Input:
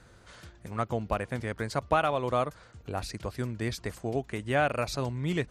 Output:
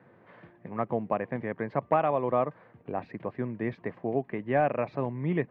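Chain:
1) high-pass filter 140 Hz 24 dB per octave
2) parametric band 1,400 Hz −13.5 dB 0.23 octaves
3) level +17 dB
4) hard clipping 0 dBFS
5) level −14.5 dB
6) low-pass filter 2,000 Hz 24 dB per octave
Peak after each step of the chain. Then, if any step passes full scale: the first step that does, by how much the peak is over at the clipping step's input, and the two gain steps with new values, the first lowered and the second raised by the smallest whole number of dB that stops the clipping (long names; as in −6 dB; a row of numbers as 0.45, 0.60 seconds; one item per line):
−12.0, −12.5, +4.5, 0.0, −14.5, −13.5 dBFS
step 3, 4.5 dB
step 3 +12 dB, step 5 −9.5 dB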